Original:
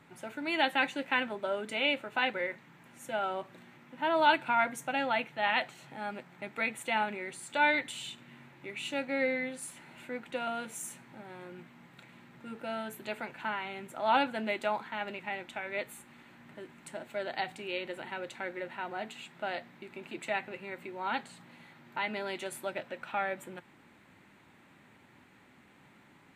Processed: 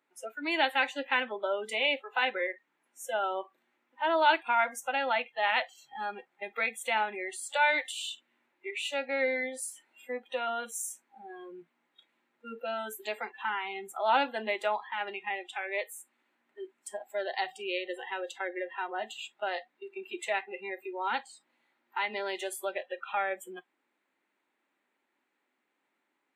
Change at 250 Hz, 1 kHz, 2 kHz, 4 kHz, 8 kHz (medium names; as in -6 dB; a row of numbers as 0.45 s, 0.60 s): -4.0 dB, +1.5 dB, +1.5 dB, +2.0 dB, +5.0 dB